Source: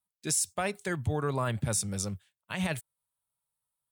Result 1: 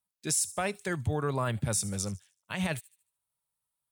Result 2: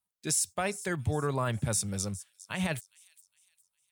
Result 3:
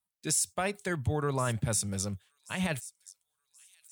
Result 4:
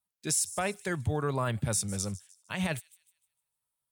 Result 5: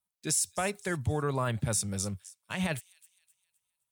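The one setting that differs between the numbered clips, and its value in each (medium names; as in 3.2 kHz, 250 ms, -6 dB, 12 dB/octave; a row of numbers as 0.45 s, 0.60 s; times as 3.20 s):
feedback echo behind a high-pass, time: 75 ms, 409 ms, 1079 ms, 152 ms, 259 ms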